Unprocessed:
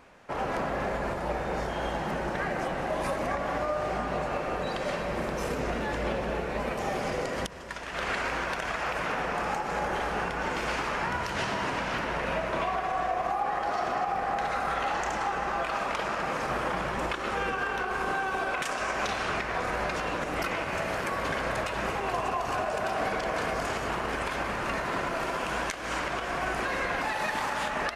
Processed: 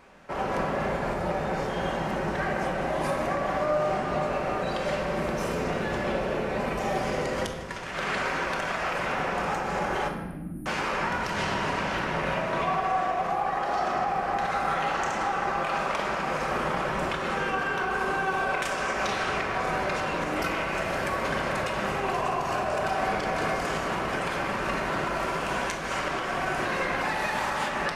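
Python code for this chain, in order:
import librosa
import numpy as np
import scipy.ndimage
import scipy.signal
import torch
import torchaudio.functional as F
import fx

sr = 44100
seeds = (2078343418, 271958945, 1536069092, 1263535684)

y = fx.brickwall_bandstop(x, sr, low_hz=340.0, high_hz=9000.0, at=(10.08, 10.66))
y = fx.room_shoebox(y, sr, seeds[0], volume_m3=640.0, walls='mixed', distance_m=1.1)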